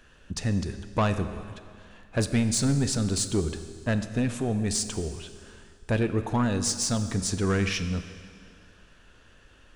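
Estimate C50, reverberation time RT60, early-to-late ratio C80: 10.5 dB, 2.1 s, 11.5 dB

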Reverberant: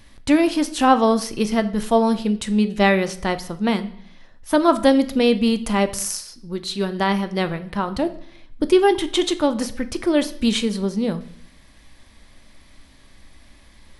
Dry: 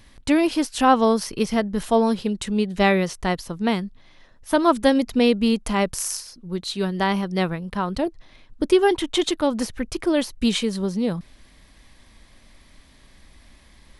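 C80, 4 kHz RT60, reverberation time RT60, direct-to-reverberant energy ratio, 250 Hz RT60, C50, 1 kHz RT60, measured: 18.5 dB, 0.60 s, 0.60 s, 9.5 dB, 0.75 s, 15.0 dB, 0.60 s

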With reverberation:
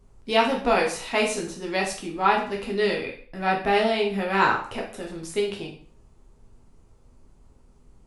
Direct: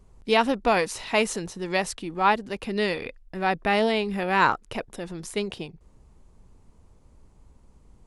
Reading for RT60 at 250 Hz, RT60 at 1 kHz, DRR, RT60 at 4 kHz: 0.50 s, 0.50 s, -1.5 dB, 0.45 s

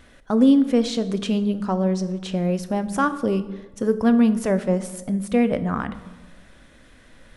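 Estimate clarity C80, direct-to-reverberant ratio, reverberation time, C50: 16.0 dB, 11.0 dB, 1.2 s, 14.5 dB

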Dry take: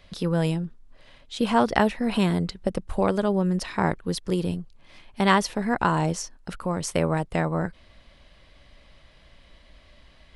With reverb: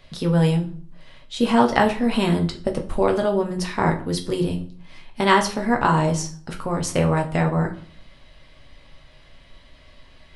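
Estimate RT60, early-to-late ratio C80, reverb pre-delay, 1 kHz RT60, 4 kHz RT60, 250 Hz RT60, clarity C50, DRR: 0.50 s, 17.5 dB, 7 ms, 0.50 s, 0.35 s, 0.65 s, 12.5 dB, 2.0 dB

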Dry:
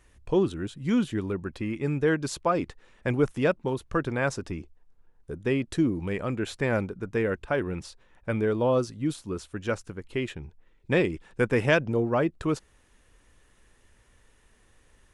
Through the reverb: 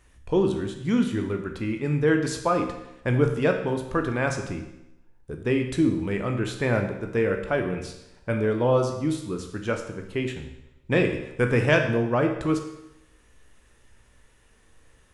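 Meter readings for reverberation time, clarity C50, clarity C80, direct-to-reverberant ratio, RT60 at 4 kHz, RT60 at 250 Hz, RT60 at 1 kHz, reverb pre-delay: 0.85 s, 7.5 dB, 10.0 dB, 4.0 dB, 0.80 s, 0.90 s, 0.85 s, 16 ms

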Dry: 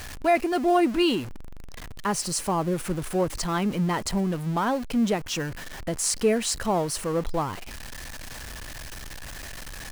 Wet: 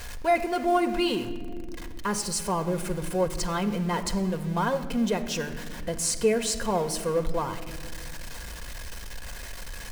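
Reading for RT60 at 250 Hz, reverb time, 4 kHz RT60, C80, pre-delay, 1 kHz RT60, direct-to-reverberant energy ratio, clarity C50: 2.9 s, 1.9 s, 1.0 s, 13.0 dB, 4 ms, 1.5 s, 6.5 dB, 11.5 dB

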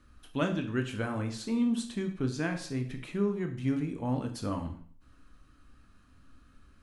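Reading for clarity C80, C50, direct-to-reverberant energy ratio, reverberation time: 13.5 dB, 10.0 dB, 4.5 dB, 0.50 s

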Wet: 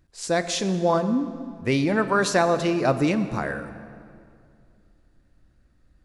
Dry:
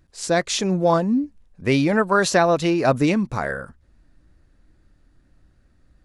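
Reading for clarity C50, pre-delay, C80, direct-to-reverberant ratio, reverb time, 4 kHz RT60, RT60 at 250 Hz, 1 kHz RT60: 11.5 dB, 11 ms, 12.0 dB, 10.5 dB, 2.3 s, 1.7 s, 2.6 s, 2.2 s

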